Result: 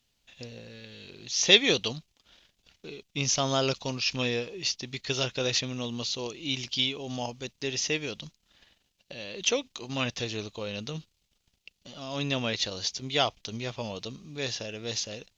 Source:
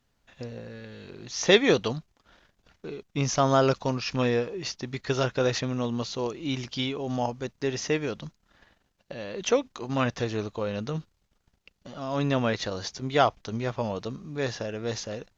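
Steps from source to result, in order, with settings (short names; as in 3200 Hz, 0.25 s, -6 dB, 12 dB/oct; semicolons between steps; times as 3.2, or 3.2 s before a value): resonant high shelf 2100 Hz +9.5 dB, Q 1.5; gain -5.5 dB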